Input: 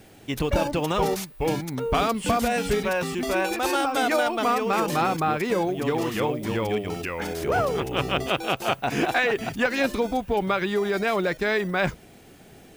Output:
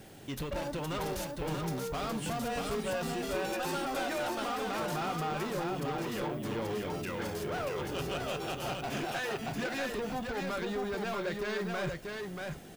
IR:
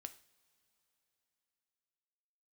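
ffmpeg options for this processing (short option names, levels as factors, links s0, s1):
-filter_complex "[0:a]equalizer=f=2300:w=6.4:g=-4,asplit=2[s0][s1];[s1]acompressor=threshold=0.0178:ratio=6,volume=1.41[s2];[s0][s2]amix=inputs=2:normalize=0,asoftclip=type=tanh:threshold=0.0668,aecho=1:1:635:0.631[s3];[1:a]atrim=start_sample=2205,asetrate=79380,aresample=44100[s4];[s3][s4]afir=irnorm=-1:irlink=0,volume=1.26"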